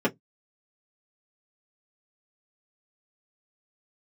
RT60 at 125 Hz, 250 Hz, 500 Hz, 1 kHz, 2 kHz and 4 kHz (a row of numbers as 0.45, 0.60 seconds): 0.25, 0.15, 0.15, 0.10, 0.10, 0.10 seconds